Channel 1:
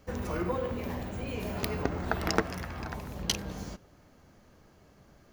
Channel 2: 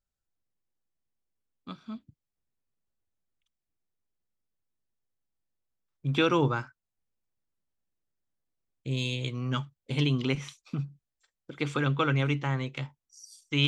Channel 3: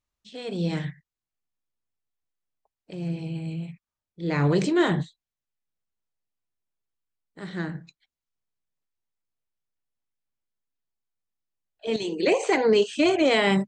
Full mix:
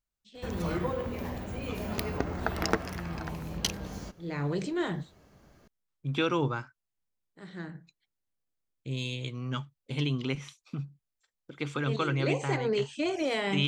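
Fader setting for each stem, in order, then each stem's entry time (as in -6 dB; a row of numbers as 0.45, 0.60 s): -0.5, -3.5, -9.5 dB; 0.35, 0.00, 0.00 s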